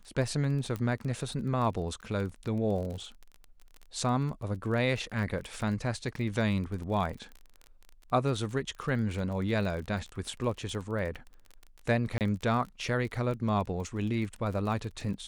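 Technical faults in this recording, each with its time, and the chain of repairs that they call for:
crackle 29/s -37 dBFS
0.76 pop -22 dBFS
12.18–12.21 gap 28 ms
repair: de-click; interpolate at 12.18, 28 ms

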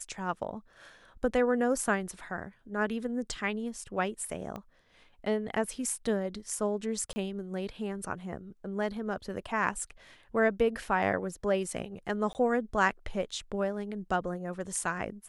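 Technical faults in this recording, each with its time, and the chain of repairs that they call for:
4.56 pop -26 dBFS
7.13–7.16 gap 30 ms
12.33–12.35 gap 19 ms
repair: de-click; interpolate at 7.13, 30 ms; interpolate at 12.33, 19 ms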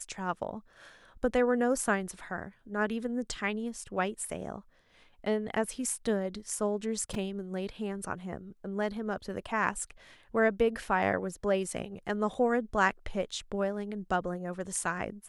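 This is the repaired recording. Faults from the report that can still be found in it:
4.56 pop

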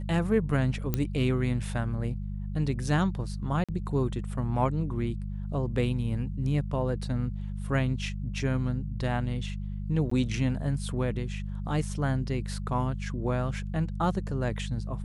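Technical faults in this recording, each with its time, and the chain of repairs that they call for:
hum 50 Hz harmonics 4 -34 dBFS
0.94 pop -13 dBFS
3.64–3.69 gap 46 ms
10.1–10.11 gap 14 ms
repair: de-click; de-hum 50 Hz, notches 4; interpolate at 3.64, 46 ms; interpolate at 10.1, 14 ms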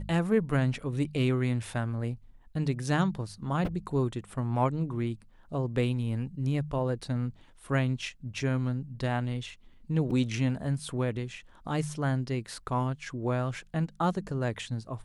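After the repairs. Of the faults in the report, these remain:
none

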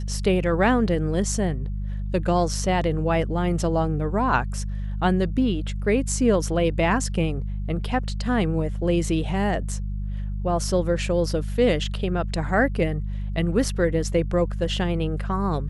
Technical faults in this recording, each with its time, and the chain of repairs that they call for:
hum 50 Hz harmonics 4 -28 dBFS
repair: de-hum 50 Hz, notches 4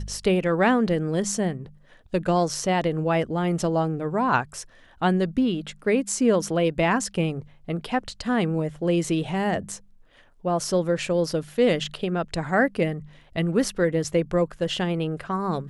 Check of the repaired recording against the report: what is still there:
none

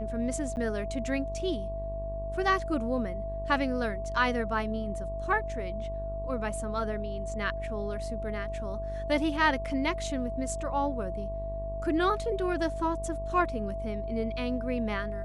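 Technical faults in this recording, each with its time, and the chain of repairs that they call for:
buzz 50 Hz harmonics 23 -37 dBFS
tone 660 Hz -35 dBFS
0.56–0.57 gap 9.7 ms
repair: de-hum 50 Hz, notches 23; notch 660 Hz, Q 30; interpolate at 0.56, 9.7 ms

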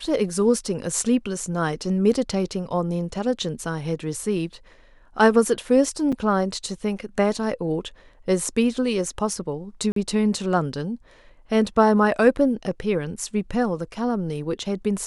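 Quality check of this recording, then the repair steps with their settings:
6.12–6.13 gap 5.7 ms
9.92–9.96 gap 43 ms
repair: interpolate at 6.12, 5.7 ms; interpolate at 9.92, 43 ms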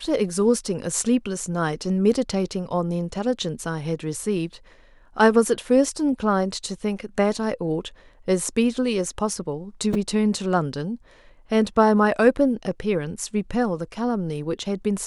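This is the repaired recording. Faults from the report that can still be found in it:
none

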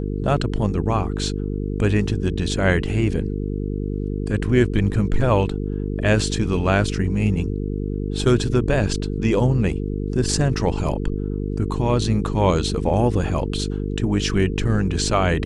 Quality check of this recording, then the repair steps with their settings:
buzz 50 Hz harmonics 9 -25 dBFS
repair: de-hum 50 Hz, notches 9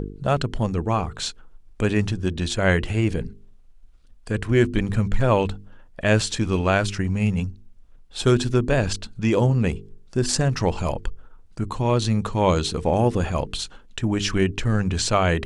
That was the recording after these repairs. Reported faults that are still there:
none

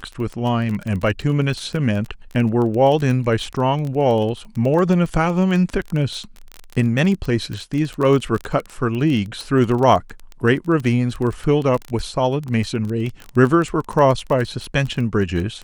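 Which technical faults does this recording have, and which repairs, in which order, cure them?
crackle 21/s -23 dBFS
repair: de-click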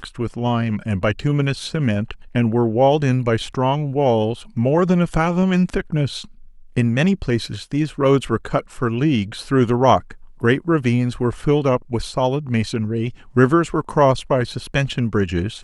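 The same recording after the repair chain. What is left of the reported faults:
none

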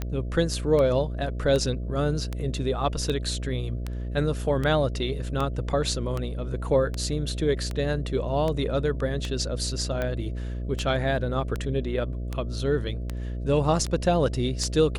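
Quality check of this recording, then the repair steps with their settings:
buzz 60 Hz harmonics 11 -31 dBFS
tick 78 rpm -16 dBFS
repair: de-click; de-hum 60 Hz, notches 11

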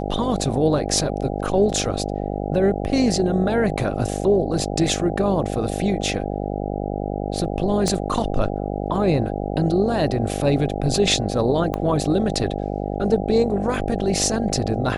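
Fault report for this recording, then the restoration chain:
buzz 50 Hz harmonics 16 -26 dBFS
7.88 pop -11 dBFS
11.74 pop -12 dBFS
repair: de-click; de-hum 50 Hz, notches 16

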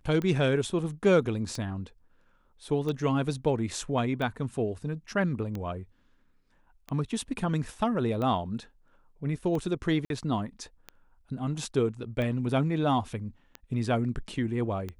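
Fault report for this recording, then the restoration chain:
tick 45 rpm -22 dBFS
10.05–10.1 gap 52 ms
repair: de-click; interpolate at 10.05, 52 ms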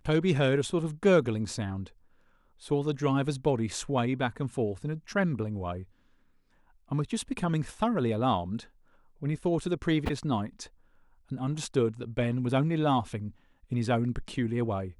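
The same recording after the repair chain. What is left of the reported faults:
none

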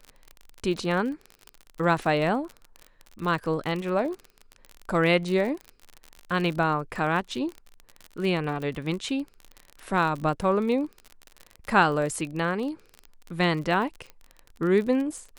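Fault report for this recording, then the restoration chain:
crackle 40/s -31 dBFS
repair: de-click

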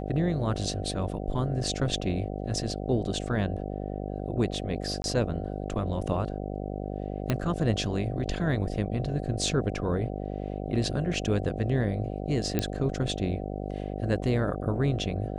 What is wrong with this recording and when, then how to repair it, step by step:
buzz 50 Hz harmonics 15 -34 dBFS
5.02–5.04 gap 21 ms
7.3 pop -12 dBFS
12.59 pop -12 dBFS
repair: de-click; de-hum 50 Hz, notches 15; interpolate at 5.02, 21 ms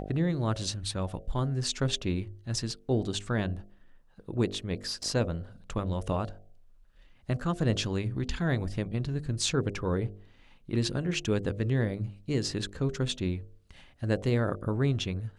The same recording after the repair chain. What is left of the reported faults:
7.3 pop

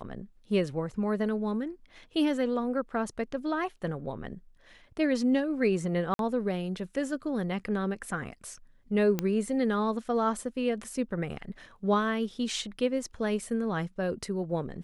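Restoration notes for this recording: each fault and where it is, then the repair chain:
6.14–6.19 gap 52 ms
9.19 pop -14 dBFS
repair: de-click; interpolate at 6.14, 52 ms

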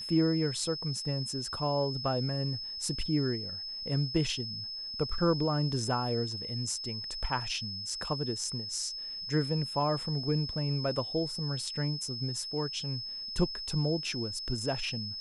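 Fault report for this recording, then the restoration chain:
tone 5200 Hz -37 dBFS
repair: notch 5200 Hz, Q 30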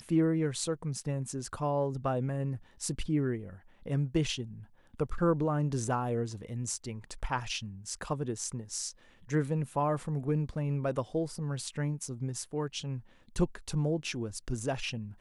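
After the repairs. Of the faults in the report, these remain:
none

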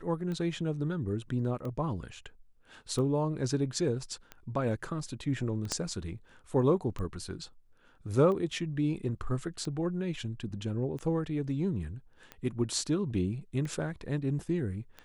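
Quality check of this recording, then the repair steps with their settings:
tick 45 rpm -27 dBFS
5.72 pop -17 dBFS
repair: de-click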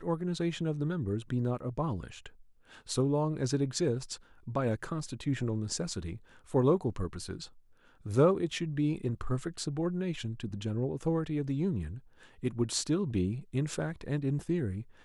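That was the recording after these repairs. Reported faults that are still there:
5.72 pop

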